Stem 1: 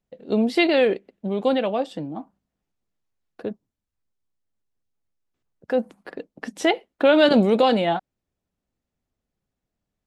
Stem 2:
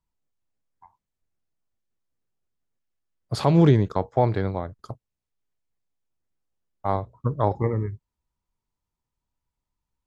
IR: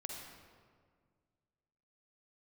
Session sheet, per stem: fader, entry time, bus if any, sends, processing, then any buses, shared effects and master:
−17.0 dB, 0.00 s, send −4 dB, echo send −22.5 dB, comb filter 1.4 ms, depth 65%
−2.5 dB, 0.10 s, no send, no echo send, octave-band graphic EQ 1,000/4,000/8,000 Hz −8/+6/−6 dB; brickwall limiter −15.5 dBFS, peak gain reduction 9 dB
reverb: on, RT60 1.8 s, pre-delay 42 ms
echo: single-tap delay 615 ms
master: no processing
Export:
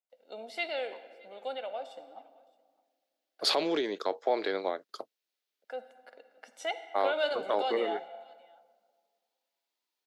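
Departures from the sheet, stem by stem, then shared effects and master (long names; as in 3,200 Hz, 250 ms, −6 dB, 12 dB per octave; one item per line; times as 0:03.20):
stem 2 −2.5 dB → +5.0 dB
master: extra Bessel high-pass filter 530 Hz, order 6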